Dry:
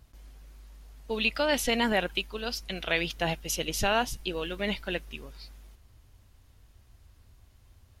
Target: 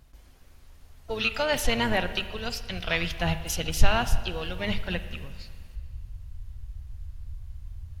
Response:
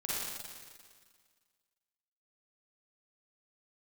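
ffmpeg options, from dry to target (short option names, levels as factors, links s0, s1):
-filter_complex "[0:a]asplit=3[s0][s1][s2];[s1]asetrate=22050,aresample=44100,atempo=2,volume=0.158[s3];[s2]asetrate=66075,aresample=44100,atempo=0.66742,volume=0.158[s4];[s0][s3][s4]amix=inputs=3:normalize=0,asubboost=boost=11.5:cutoff=98,bandreject=f=50:t=h:w=6,bandreject=f=100:t=h:w=6,bandreject=f=150:t=h:w=6,bandreject=f=200:t=h:w=6,asplit=2[s5][s6];[1:a]atrim=start_sample=2205,lowpass=4000[s7];[s6][s7]afir=irnorm=-1:irlink=0,volume=0.188[s8];[s5][s8]amix=inputs=2:normalize=0"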